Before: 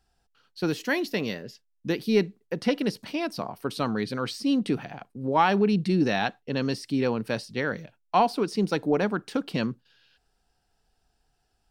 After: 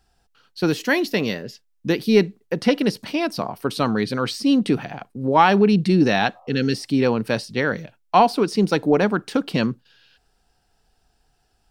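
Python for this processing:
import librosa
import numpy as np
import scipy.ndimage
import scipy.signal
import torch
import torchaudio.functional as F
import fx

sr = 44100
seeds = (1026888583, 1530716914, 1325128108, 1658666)

y = fx.spec_repair(x, sr, seeds[0], start_s=6.37, length_s=0.46, low_hz=530.0, high_hz=1300.0, source='both')
y = y * 10.0 ** (6.5 / 20.0)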